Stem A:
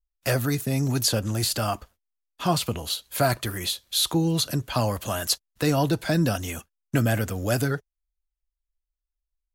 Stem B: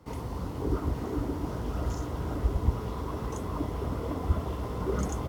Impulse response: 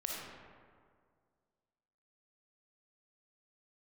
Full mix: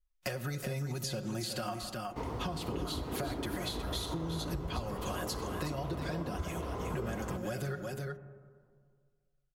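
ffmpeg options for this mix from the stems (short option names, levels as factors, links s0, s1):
-filter_complex "[0:a]aecho=1:1:5.5:0.84,acompressor=threshold=0.0631:ratio=6,volume=0.668,asplit=3[s0][s1][s2];[s1]volume=0.316[s3];[s2]volume=0.473[s4];[1:a]bass=f=250:g=-5,treble=f=4000:g=-3,adelay=2100,volume=1.26,asplit=2[s5][s6];[s6]volume=0.299[s7];[2:a]atrim=start_sample=2205[s8];[s3][s7]amix=inputs=2:normalize=0[s9];[s9][s8]afir=irnorm=-1:irlink=0[s10];[s4]aecho=0:1:367:1[s11];[s0][s5][s10][s11]amix=inputs=4:normalize=0,highshelf=f=7900:g=-8.5,acompressor=threshold=0.02:ratio=5"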